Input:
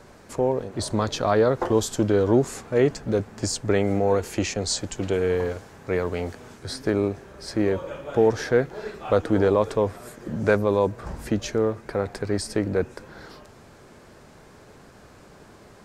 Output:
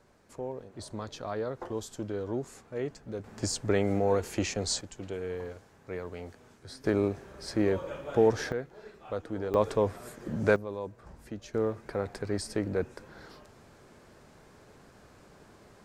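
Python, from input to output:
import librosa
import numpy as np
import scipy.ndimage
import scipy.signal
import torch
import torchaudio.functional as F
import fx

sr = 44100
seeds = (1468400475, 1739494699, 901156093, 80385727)

y = fx.gain(x, sr, db=fx.steps((0.0, -14.5), (3.24, -5.0), (4.81, -13.0), (6.84, -4.0), (8.52, -14.5), (9.54, -4.0), (10.56, -16.0), (11.54, -6.5)))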